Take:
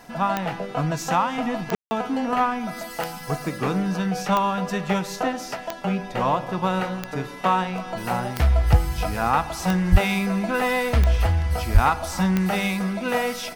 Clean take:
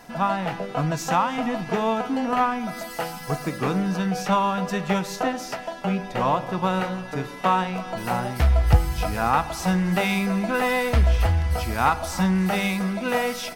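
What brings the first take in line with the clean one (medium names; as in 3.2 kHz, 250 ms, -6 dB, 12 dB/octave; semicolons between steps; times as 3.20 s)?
clip repair -5 dBFS; de-click; 9.91–10.03 s: high-pass 140 Hz 24 dB/octave; 11.73–11.85 s: high-pass 140 Hz 24 dB/octave; room tone fill 1.75–1.91 s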